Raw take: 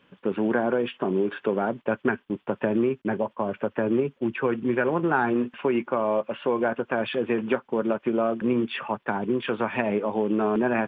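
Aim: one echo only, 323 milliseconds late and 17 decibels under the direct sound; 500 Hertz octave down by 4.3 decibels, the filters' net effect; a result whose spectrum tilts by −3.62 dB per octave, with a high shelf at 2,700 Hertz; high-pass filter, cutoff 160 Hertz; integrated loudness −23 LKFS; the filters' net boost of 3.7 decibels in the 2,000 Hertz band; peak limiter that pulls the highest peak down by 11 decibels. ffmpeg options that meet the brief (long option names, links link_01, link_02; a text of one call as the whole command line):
ffmpeg -i in.wav -af "highpass=160,equalizer=frequency=500:width_type=o:gain=-6,equalizer=frequency=2000:width_type=o:gain=4,highshelf=frequency=2700:gain=4.5,alimiter=limit=-19dB:level=0:latency=1,aecho=1:1:323:0.141,volume=7dB" out.wav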